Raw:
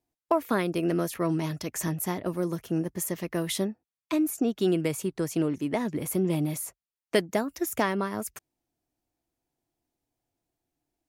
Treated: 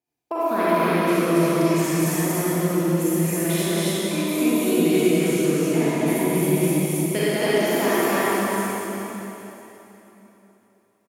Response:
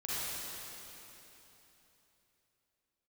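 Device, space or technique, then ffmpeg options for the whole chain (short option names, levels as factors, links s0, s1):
stadium PA: -filter_complex "[0:a]highpass=120,equalizer=f=2400:t=o:w=0.25:g=6.5,aecho=1:1:212.8|274.1:0.355|1[s0];[1:a]atrim=start_sample=2205[s1];[s0][s1]afir=irnorm=-1:irlink=0"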